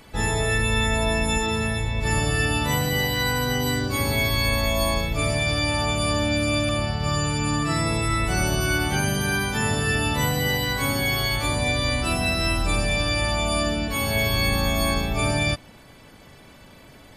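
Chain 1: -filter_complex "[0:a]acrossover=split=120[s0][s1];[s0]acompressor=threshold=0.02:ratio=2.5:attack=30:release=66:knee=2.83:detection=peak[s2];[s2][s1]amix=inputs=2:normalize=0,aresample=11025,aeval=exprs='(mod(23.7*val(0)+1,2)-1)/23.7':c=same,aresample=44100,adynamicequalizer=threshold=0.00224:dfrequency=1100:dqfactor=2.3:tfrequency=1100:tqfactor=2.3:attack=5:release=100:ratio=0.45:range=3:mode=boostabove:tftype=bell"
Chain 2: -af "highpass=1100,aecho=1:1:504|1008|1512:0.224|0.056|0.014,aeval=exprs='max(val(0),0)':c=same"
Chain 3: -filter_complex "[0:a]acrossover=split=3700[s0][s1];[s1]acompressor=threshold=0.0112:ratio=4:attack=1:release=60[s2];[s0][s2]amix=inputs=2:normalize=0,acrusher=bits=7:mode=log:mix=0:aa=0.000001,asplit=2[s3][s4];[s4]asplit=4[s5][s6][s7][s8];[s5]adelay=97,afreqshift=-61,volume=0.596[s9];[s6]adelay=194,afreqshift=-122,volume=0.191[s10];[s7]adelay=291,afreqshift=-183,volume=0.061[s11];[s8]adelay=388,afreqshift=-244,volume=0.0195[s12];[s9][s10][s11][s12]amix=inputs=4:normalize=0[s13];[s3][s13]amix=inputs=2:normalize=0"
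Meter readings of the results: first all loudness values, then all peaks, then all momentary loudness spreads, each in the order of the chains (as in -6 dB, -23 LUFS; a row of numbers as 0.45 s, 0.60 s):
-29.5 LUFS, -30.0 LUFS, -22.5 LUFS; -21.0 dBFS, -15.0 dBFS, -8.0 dBFS; 1 LU, 4 LU, 2 LU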